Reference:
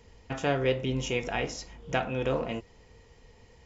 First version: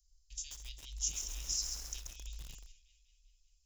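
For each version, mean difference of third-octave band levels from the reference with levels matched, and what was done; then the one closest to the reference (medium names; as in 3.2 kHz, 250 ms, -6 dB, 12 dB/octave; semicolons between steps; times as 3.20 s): 15.5 dB: gate -48 dBFS, range -14 dB; inverse Chebyshev band-stop 160–1400 Hz, stop band 70 dB; on a send: tape echo 196 ms, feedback 72%, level -11 dB, low-pass 5.8 kHz; on the sum: bit-crushed delay 134 ms, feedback 55%, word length 9-bit, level -4.5 dB; trim +8 dB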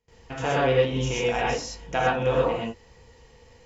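4.5 dB: bass shelf 400 Hz -3 dB; gated-style reverb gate 150 ms rising, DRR -4.5 dB; gate with hold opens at -47 dBFS; dynamic bell 910 Hz, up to +5 dB, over -38 dBFS, Q 1.7; trim -1 dB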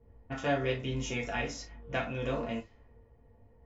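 3.0 dB: band-stop 810 Hz, Q 12; level-controlled noise filter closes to 650 Hz, open at -29 dBFS; peaking EQ 350 Hz -5 dB 0.23 oct; gated-style reverb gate 80 ms falling, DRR -2 dB; trim -6.5 dB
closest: third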